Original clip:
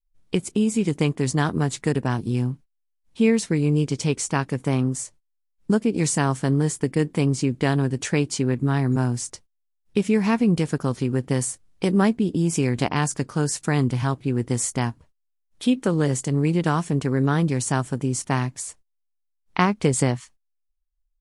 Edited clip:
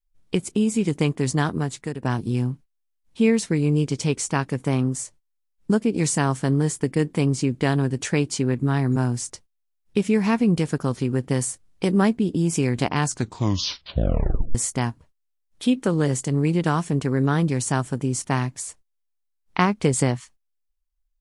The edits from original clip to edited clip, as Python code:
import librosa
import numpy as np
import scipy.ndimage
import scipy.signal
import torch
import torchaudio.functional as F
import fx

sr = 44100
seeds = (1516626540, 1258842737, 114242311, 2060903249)

y = fx.edit(x, sr, fx.fade_out_to(start_s=1.39, length_s=0.63, floor_db=-11.0),
    fx.tape_stop(start_s=13.03, length_s=1.52), tone=tone)